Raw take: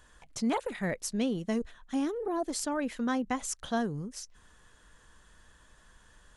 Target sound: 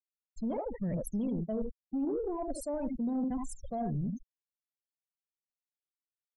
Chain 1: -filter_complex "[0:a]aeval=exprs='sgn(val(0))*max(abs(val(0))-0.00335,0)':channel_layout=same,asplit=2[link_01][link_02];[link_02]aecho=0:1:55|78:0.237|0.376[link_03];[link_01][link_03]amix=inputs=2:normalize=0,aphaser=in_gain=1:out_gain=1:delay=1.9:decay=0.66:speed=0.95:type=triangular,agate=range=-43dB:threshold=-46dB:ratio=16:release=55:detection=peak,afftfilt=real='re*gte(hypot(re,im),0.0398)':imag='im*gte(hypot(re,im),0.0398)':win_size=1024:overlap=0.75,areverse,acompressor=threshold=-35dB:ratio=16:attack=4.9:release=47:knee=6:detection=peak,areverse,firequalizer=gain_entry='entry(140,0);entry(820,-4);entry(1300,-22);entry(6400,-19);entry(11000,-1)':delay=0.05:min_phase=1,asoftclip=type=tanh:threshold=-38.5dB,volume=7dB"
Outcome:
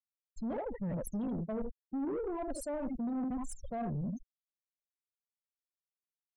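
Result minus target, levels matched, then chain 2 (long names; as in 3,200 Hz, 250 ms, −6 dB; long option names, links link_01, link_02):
soft clipping: distortion +12 dB
-filter_complex "[0:a]aeval=exprs='sgn(val(0))*max(abs(val(0))-0.00335,0)':channel_layout=same,asplit=2[link_01][link_02];[link_02]aecho=0:1:55|78:0.237|0.376[link_03];[link_01][link_03]amix=inputs=2:normalize=0,aphaser=in_gain=1:out_gain=1:delay=1.9:decay=0.66:speed=0.95:type=triangular,agate=range=-43dB:threshold=-46dB:ratio=16:release=55:detection=peak,afftfilt=real='re*gte(hypot(re,im),0.0398)':imag='im*gte(hypot(re,im),0.0398)':win_size=1024:overlap=0.75,areverse,acompressor=threshold=-35dB:ratio=16:attack=4.9:release=47:knee=6:detection=peak,areverse,firequalizer=gain_entry='entry(140,0);entry(820,-4);entry(1300,-22);entry(6400,-19);entry(11000,-1)':delay=0.05:min_phase=1,asoftclip=type=tanh:threshold=-30dB,volume=7dB"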